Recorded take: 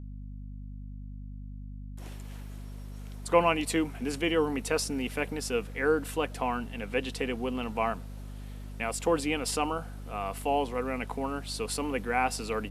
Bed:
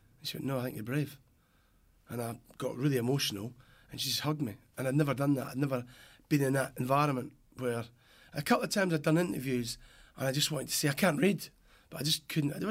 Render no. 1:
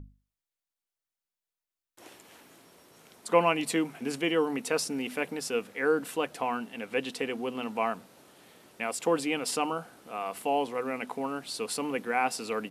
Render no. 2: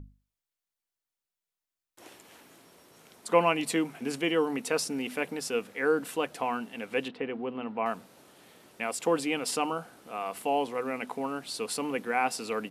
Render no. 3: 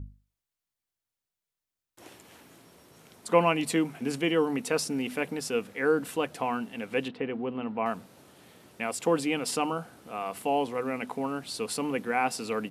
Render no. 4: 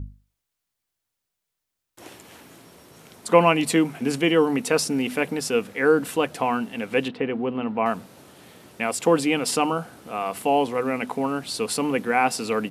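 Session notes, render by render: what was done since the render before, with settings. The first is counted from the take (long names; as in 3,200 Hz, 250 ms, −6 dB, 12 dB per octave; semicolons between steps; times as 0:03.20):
mains-hum notches 50/100/150/200/250 Hz
0:07.08–0:07.86: high-frequency loss of the air 420 metres
parametric band 82 Hz +8.5 dB 2.5 octaves
level +6.5 dB; brickwall limiter −3 dBFS, peak gain reduction 1 dB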